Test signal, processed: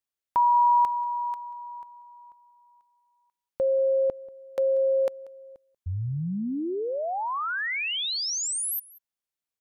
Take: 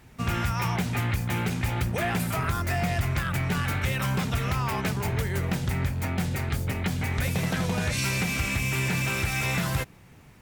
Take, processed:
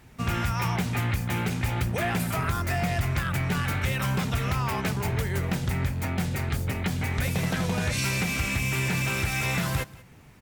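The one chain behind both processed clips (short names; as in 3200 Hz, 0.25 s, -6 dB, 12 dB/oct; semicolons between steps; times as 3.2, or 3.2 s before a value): echo 0.187 s -21.5 dB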